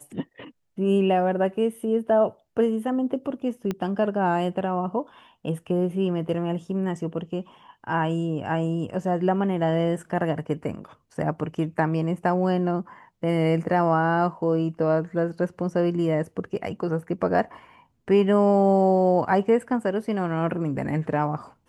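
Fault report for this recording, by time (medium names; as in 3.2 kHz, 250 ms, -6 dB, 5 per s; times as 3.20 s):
3.71 s: pop -15 dBFS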